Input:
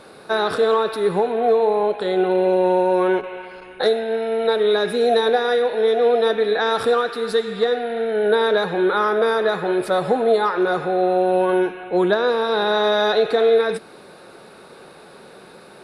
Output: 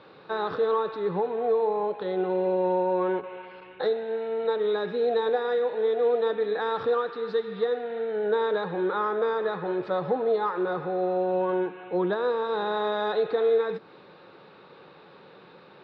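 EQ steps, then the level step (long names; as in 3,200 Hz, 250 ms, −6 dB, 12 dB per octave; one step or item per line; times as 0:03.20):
dynamic equaliser 2,900 Hz, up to −8 dB, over −41 dBFS, Q 1
high-frequency loss of the air 85 metres
loudspeaker in its box 110–3,900 Hz, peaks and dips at 230 Hz −8 dB, 390 Hz −5 dB, 670 Hz −9 dB, 1,500 Hz −5 dB, 2,200 Hz −3 dB
−3.0 dB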